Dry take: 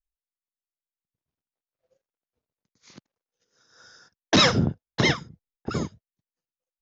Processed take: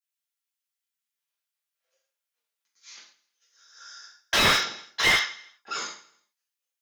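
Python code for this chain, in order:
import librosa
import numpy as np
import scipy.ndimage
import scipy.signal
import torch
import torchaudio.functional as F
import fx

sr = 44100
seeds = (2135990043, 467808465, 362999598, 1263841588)

p1 = scipy.signal.sosfilt(scipy.signal.butter(2, 1500.0, 'highpass', fs=sr, output='sos'), x)
p2 = p1 + fx.echo_feedback(p1, sr, ms=163, feedback_pct=23, wet_db=-20.5, dry=0)
p3 = fx.rev_gated(p2, sr, seeds[0], gate_ms=170, shape='falling', drr_db=-7.5)
y = fx.slew_limit(p3, sr, full_power_hz=350.0)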